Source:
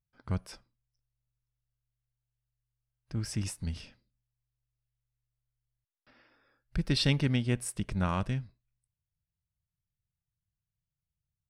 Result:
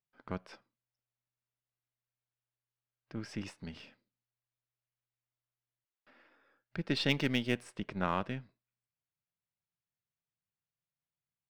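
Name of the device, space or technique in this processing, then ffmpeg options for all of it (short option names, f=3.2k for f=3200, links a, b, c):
crystal radio: -filter_complex "[0:a]highpass=240,lowpass=3.2k,aeval=exprs='if(lt(val(0),0),0.708*val(0),val(0))':c=same,asplit=3[a][b][c];[a]afade=t=out:st=7.09:d=0.02[d];[b]aemphasis=mode=production:type=75kf,afade=t=in:st=7.09:d=0.02,afade=t=out:st=7.61:d=0.02[e];[c]afade=t=in:st=7.61:d=0.02[f];[d][e][f]amix=inputs=3:normalize=0,volume=1.5dB"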